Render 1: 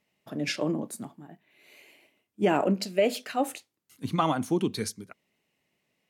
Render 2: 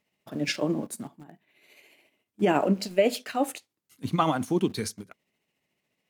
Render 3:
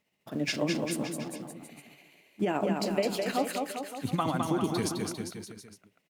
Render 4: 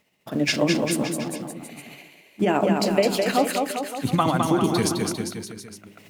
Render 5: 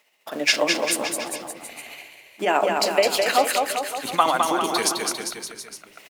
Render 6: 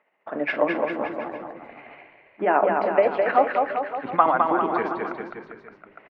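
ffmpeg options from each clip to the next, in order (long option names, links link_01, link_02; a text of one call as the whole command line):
ffmpeg -i in.wav -filter_complex "[0:a]tremolo=f=14:d=0.4,asplit=2[link_01][link_02];[link_02]aeval=exprs='val(0)*gte(abs(val(0)),0.00891)':channel_layout=same,volume=-8dB[link_03];[link_01][link_03]amix=inputs=2:normalize=0" out.wav
ffmpeg -i in.wav -filter_complex "[0:a]acompressor=threshold=-26dB:ratio=4,asplit=2[link_01][link_02];[link_02]aecho=0:1:210|399|569.1|722.2|860:0.631|0.398|0.251|0.158|0.1[link_03];[link_01][link_03]amix=inputs=2:normalize=0" out.wav
ffmpeg -i in.wav -af "bandreject=frequency=51.61:width_type=h:width=4,bandreject=frequency=103.22:width_type=h:width=4,bandreject=frequency=154.83:width_type=h:width=4,bandreject=frequency=206.44:width_type=h:width=4,bandreject=frequency=258.05:width_type=h:width=4,bandreject=frequency=309.66:width_type=h:width=4,bandreject=frequency=361.27:width_type=h:width=4,bandreject=frequency=412.88:width_type=h:width=4,areverse,acompressor=mode=upward:threshold=-45dB:ratio=2.5,areverse,volume=8.5dB" out.wav
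ffmpeg -i in.wav -filter_complex "[0:a]highpass=610,asplit=3[link_01][link_02][link_03];[link_02]adelay=346,afreqshift=-95,volume=-23dB[link_04];[link_03]adelay=692,afreqshift=-190,volume=-31.6dB[link_05];[link_01][link_04][link_05]amix=inputs=3:normalize=0,volume=5dB" out.wav
ffmpeg -i in.wav -af "lowpass=frequency=1800:width=0.5412,lowpass=frequency=1800:width=1.3066,volume=1dB" out.wav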